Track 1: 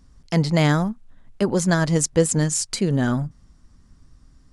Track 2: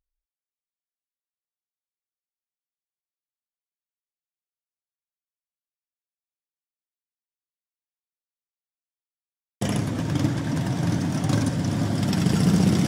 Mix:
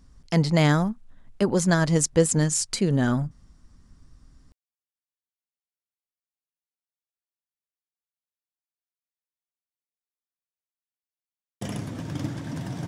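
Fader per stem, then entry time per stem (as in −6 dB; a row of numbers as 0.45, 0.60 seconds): −1.5, −7.5 decibels; 0.00, 2.00 seconds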